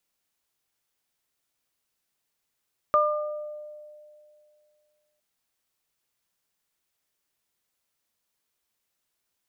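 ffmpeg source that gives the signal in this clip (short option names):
-f lavfi -i "aevalsrc='0.0891*pow(10,-3*t/2.46)*sin(2*PI*601*t)+0.158*pow(10,-3*t/0.81)*sin(2*PI*1202*t)':d=2.26:s=44100"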